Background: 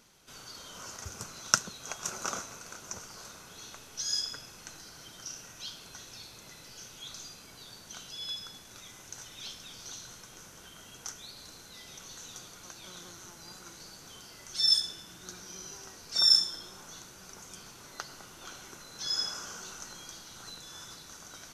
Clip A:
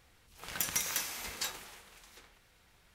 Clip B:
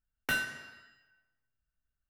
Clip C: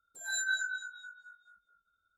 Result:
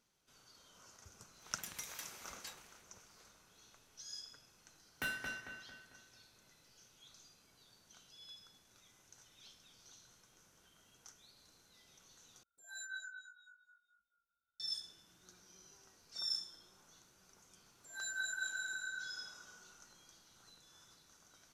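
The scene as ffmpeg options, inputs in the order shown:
-filter_complex "[3:a]asplit=2[a][b];[0:a]volume=-17dB[c];[1:a]highshelf=f=12k:g=-3.5[d];[2:a]asplit=2[e][f];[f]adelay=224,lowpass=f=3.6k:p=1,volume=-3dB,asplit=2[g][h];[h]adelay=224,lowpass=f=3.6k:p=1,volume=0.47,asplit=2[i][j];[j]adelay=224,lowpass=f=3.6k:p=1,volume=0.47,asplit=2[k][l];[l]adelay=224,lowpass=f=3.6k:p=1,volume=0.47,asplit=2[m][n];[n]adelay=224,lowpass=f=3.6k:p=1,volume=0.47,asplit=2[o][p];[p]adelay=224,lowpass=f=3.6k:p=1,volume=0.47[q];[e][g][i][k][m][o][q]amix=inputs=7:normalize=0[r];[b]aecho=1:1:220|396|536.8|649.4|739.6|811.6:0.794|0.631|0.501|0.398|0.316|0.251[s];[c]asplit=2[t][u];[t]atrim=end=12.434[v];[a]atrim=end=2.17,asetpts=PTS-STARTPTS,volume=-14dB[w];[u]atrim=start=14.596[x];[d]atrim=end=2.94,asetpts=PTS-STARTPTS,volume=-13dB,afade=t=in:d=0.004:c=hsin,afade=t=out:st=2.936:d=0.004:c=hsin,adelay=1030[y];[r]atrim=end=2.09,asetpts=PTS-STARTPTS,volume=-8.5dB,afade=t=in:d=0.004:c=hsin,afade=t=out:st=2.086:d=0.004:c=hsin,adelay=208593S[z];[s]atrim=end=2.17,asetpts=PTS-STARTPTS,volume=-9dB,afade=t=in:d=0.004:c=hsin,afade=t=out:st=2.166:d=0.004:c=hsin,adelay=17690[aa];[v][w]acrossfade=d=0.004:c1=hsin:c2=hsin[ab];[ab][x]acrossfade=d=0.004:c1=hsin:c2=hsin[ac];[ac][y][z][aa]amix=inputs=4:normalize=0"

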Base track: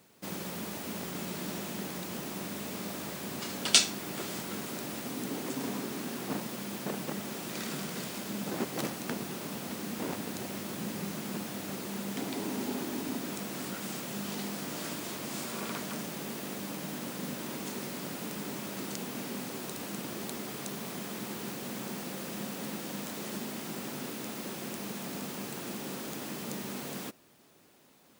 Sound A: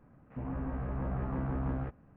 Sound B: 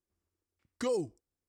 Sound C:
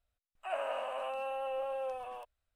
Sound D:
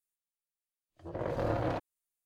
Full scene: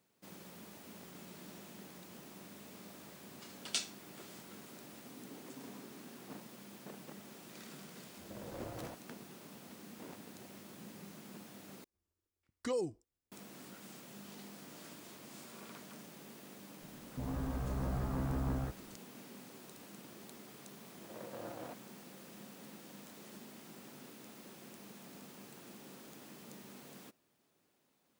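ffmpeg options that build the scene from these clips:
-filter_complex "[4:a]asplit=2[a][b];[0:a]volume=-14.5dB[c];[b]highpass=200[d];[c]asplit=2[e][f];[e]atrim=end=11.844[g];[2:a]atrim=end=1.48,asetpts=PTS-STARTPTS,volume=-4dB[h];[f]atrim=start=13.316[i];[a]atrim=end=2.25,asetpts=PTS-STARTPTS,volume=-15dB,afade=t=in:d=0.004:c=hsin,afade=t=out:st=2.246:d=0.004:c=hsin,adelay=7160[j];[1:a]atrim=end=2.16,asetpts=PTS-STARTPTS,volume=-2dB,afade=t=in:d=0.004:c=hsin,afade=t=out:st=2.156:d=0.004:c=hsin,adelay=16810[k];[d]atrim=end=2.25,asetpts=PTS-STARTPTS,volume=-13.5dB,afade=t=in:d=0.004:c=hsin,afade=t=out:st=2.246:d=0.004:c=hsin,adelay=19950[l];[g][h]acrossfade=d=0.004:c1=hsin:c2=hsin[m];[m][i]acrossfade=d=0.004:c1=hsin:c2=hsin[n];[n][j][k][l]amix=inputs=4:normalize=0"

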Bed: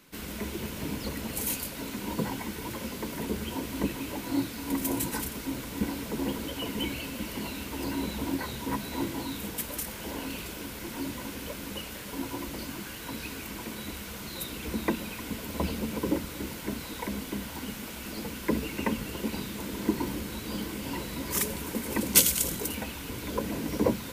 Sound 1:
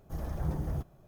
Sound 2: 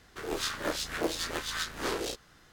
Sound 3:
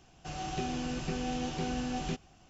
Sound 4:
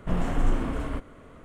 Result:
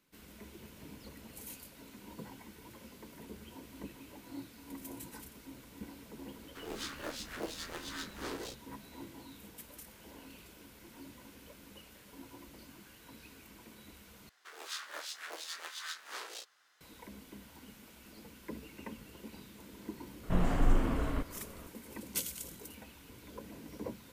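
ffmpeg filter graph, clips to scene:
-filter_complex "[2:a]asplit=2[a][b];[0:a]volume=-16.5dB[c];[b]highpass=860[d];[c]asplit=2[e][f];[e]atrim=end=14.294[g];[d]atrim=end=2.52,asetpts=PTS-STARTPTS,volume=-8dB[h];[f]atrim=start=16.806[i];[a]atrim=end=2.52,asetpts=PTS-STARTPTS,volume=-9.5dB,afade=t=in:d=0.004:c=hsin,afade=t=out:st=2.516:d=0.004:c=hsin,adelay=6390[j];[4:a]atrim=end=1.44,asetpts=PTS-STARTPTS,volume=-3dB,afade=t=in:d=0.004:c=hsin,afade=t=out:st=1.436:d=0.004:c=hsin,adelay=20230[k];[g][h]acrossfade=d=0.004:c1=hsin:c2=hsin[l];[l][i]acrossfade=d=0.004:c1=hsin:c2=hsin[m];[m][j][k]amix=inputs=3:normalize=0"

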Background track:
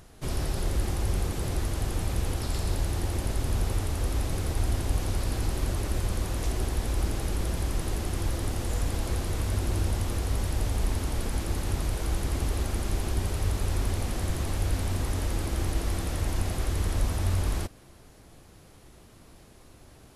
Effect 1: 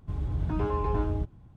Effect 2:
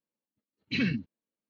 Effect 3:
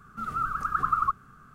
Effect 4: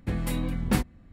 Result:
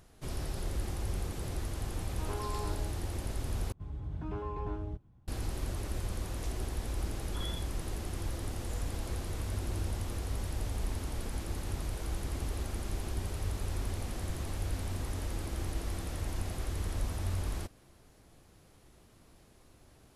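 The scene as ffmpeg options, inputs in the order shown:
-filter_complex "[1:a]asplit=2[a][b];[0:a]volume=-7.5dB[c];[a]highpass=450[d];[2:a]lowpass=f=3.1k:t=q:w=0.5098,lowpass=f=3.1k:t=q:w=0.6013,lowpass=f=3.1k:t=q:w=0.9,lowpass=f=3.1k:t=q:w=2.563,afreqshift=-3600[e];[c]asplit=2[f][g];[f]atrim=end=3.724[h];[b]atrim=end=1.56,asetpts=PTS-STARTPTS,volume=-9.5dB[i];[g]atrim=start=5.276[j];[d]atrim=end=1.56,asetpts=PTS-STARTPTS,volume=-7dB,afade=t=in:d=0.004:c=hsin,afade=t=out:st=1.556:d=0.004:c=hsin,adelay=1690[k];[e]atrim=end=1.49,asetpts=PTS-STARTPTS,volume=-17dB,afade=t=in:d=0.004:c=hsin,afade=t=out:st=1.486:d=0.004:c=hsin,adelay=6620[l];[h][i]acrossfade=d=0.004:c1=hsin:c2=hsin[m];[m][j]acrossfade=d=0.004:c1=hsin:c2=hsin[n];[n][k][l]amix=inputs=3:normalize=0"

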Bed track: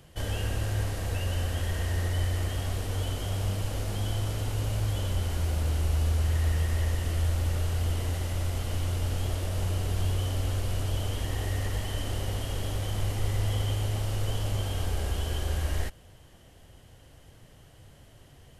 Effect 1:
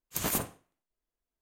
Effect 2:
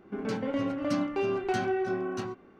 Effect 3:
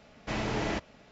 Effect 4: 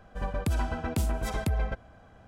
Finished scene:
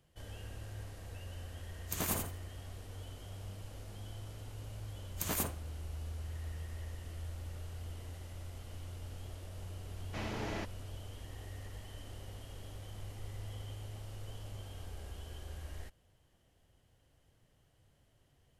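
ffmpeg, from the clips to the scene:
-filter_complex "[1:a]asplit=2[a][b];[0:a]volume=-16.5dB[c];[a]aecho=1:1:82|164|246:0.562|0.101|0.0182,atrim=end=1.41,asetpts=PTS-STARTPTS,volume=-6dB,afade=t=in:d=0.004:c=hsin,afade=t=out:st=1.406:d=0.004:c=hsin,adelay=1760[d];[b]atrim=end=1.41,asetpts=PTS-STARTPTS,volume=-5dB,afade=t=in:d=0.004:c=hsin,afade=t=out:st=1.406:d=0.004:c=hsin,adelay=222705S[e];[3:a]atrim=end=1.11,asetpts=PTS-STARTPTS,volume=-8.5dB,afade=t=in:d=0.004:c=hsin,afade=t=out:st=1.106:d=0.004:c=hsin,adelay=434826S[f];[c][d][e][f]amix=inputs=4:normalize=0"

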